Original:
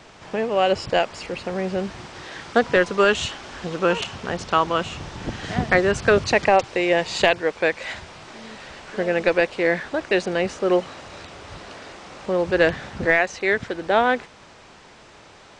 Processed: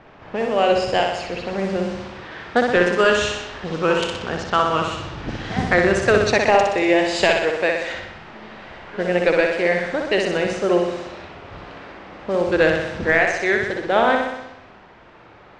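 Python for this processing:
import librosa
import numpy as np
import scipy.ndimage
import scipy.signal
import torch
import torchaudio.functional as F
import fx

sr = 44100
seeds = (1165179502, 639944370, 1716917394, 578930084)

y = fx.wow_flutter(x, sr, seeds[0], rate_hz=2.1, depth_cents=65.0)
y = fx.room_flutter(y, sr, wall_m=10.6, rt60_s=0.9)
y = fx.env_lowpass(y, sr, base_hz=1900.0, full_db=-17.5)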